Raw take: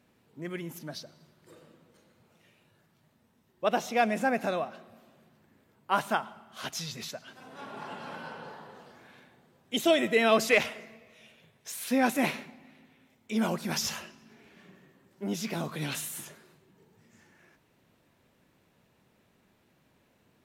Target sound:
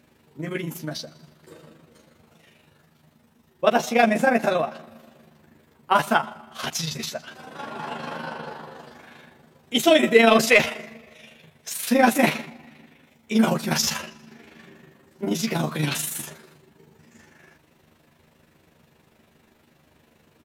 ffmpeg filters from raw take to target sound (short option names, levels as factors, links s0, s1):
-filter_complex "[0:a]acontrast=81,tremolo=f=25:d=0.71,asplit=2[s0][s1];[s1]adelay=13,volume=0.631[s2];[s0][s2]amix=inputs=2:normalize=0,volume=1.41"